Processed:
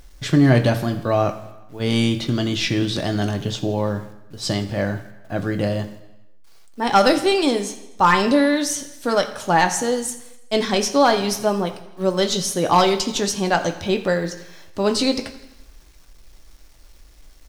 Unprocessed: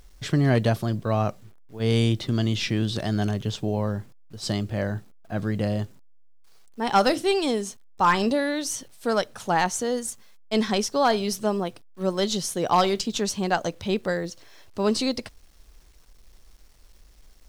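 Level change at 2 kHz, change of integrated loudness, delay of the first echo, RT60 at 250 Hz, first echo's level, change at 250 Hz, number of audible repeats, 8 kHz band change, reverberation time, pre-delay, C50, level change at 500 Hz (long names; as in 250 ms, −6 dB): +6.0 dB, +5.0 dB, 83 ms, 0.95 s, −17.5 dB, +5.0 dB, 4, +5.5 dB, 1.0 s, 3 ms, 11.5 dB, +5.0 dB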